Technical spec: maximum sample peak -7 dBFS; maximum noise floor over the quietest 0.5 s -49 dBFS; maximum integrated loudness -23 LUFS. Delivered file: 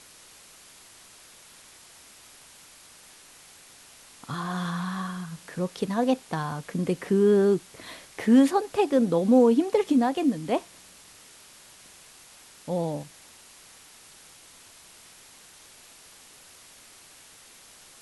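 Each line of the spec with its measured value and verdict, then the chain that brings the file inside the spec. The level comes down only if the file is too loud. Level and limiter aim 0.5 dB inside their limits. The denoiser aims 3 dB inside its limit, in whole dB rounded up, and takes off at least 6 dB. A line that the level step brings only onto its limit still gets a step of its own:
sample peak -9.0 dBFS: OK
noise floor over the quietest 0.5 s -52 dBFS: OK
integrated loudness -25.0 LUFS: OK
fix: none

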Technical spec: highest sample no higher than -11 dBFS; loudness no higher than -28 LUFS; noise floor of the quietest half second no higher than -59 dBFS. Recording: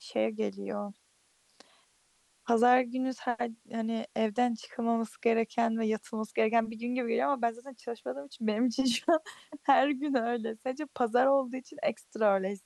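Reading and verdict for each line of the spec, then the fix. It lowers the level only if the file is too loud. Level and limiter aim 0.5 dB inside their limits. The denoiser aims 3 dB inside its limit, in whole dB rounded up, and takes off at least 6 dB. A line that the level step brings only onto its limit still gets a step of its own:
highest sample -12.5 dBFS: OK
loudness -30.5 LUFS: OK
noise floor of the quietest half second -69 dBFS: OK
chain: none

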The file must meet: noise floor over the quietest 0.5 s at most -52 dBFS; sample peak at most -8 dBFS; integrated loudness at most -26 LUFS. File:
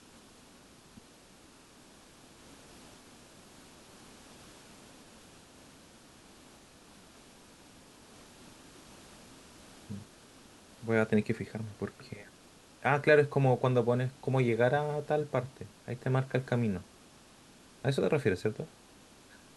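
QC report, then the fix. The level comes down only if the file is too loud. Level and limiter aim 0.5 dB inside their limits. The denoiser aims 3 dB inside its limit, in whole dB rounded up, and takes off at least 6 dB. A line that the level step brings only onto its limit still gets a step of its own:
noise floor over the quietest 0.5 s -57 dBFS: OK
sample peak -11.5 dBFS: OK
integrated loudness -30.5 LUFS: OK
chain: none

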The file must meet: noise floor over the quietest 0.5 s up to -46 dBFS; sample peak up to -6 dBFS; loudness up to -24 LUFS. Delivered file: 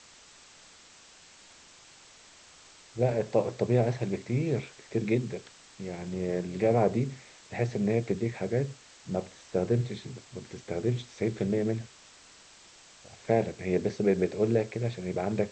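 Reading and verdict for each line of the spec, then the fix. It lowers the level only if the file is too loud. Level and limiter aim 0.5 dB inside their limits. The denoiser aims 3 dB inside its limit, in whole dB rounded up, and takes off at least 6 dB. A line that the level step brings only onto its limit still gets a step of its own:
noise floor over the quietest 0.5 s -55 dBFS: OK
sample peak -12.0 dBFS: OK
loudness -30.0 LUFS: OK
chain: none

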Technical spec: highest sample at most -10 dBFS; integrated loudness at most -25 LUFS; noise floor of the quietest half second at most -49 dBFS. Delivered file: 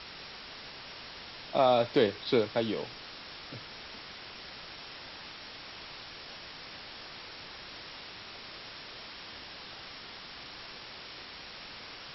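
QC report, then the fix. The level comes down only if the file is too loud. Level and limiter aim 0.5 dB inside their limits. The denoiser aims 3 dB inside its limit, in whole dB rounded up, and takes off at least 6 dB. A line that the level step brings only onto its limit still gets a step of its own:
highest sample -13.0 dBFS: OK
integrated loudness -36.0 LUFS: OK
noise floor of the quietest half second -46 dBFS: fail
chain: denoiser 6 dB, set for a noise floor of -46 dBFS

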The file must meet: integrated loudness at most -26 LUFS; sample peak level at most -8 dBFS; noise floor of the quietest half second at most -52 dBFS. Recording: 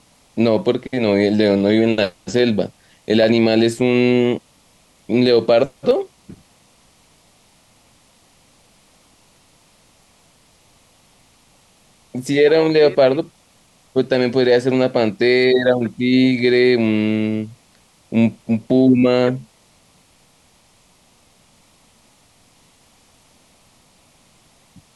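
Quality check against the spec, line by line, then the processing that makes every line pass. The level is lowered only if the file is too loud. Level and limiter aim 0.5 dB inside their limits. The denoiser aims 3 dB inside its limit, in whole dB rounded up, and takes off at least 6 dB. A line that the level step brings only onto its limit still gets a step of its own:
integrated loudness -16.5 LUFS: fail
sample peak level -4.5 dBFS: fail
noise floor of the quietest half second -55 dBFS: OK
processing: gain -10 dB

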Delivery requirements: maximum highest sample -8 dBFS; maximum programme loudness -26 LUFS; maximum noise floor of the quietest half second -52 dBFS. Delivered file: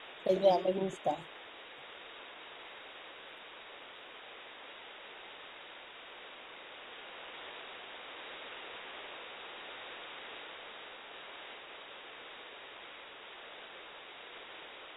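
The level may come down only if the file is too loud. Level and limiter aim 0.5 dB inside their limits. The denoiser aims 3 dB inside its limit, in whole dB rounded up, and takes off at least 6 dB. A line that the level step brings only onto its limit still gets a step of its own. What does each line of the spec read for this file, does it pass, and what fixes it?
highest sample -15.0 dBFS: OK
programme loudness -41.0 LUFS: OK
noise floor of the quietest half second -51 dBFS: fail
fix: denoiser 6 dB, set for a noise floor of -51 dBFS

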